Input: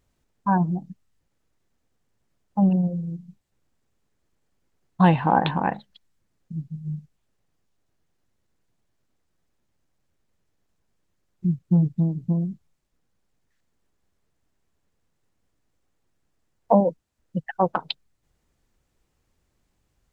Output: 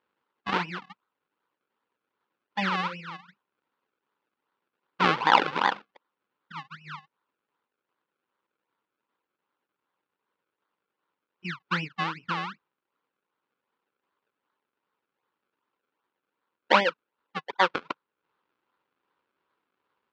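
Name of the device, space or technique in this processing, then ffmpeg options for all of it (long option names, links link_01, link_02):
circuit-bent sampling toy: -af "acrusher=samples=32:mix=1:aa=0.000001:lfo=1:lforange=32:lforate=2.6,highpass=440,equalizer=frequency=670:width_type=q:width=4:gain=-10,equalizer=frequency=1000:width_type=q:width=4:gain=7,equalizer=frequency=1400:width_type=q:width=4:gain=6,equalizer=frequency=2700:width_type=q:width=4:gain=3,lowpass=frequency=4100:width=0.5412,lowpass=frequency=4100:width=1.3066"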